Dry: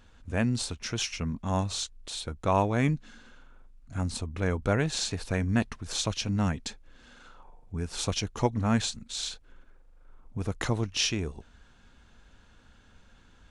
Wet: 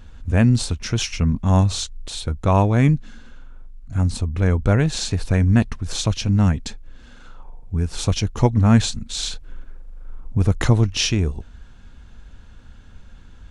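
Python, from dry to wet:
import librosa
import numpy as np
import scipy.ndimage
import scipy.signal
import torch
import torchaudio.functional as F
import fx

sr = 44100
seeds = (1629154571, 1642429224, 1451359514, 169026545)

p1 = fx.low_shelf(x, sr, hz=180.0, db=11.5)
p2 = fx.rider(p1, sr, range_db=10, speed_s=2.0)
p3 = p1 + (p2 * 10.0 ** (0.5 / 20.0))
y = p3 * 10.0 ** (-1.5 / 20.0)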